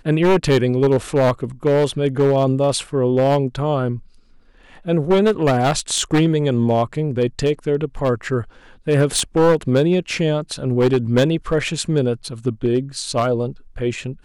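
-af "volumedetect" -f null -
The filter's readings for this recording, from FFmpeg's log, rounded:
mean_volume: -18.4 dB
max_volume: -3.9 dB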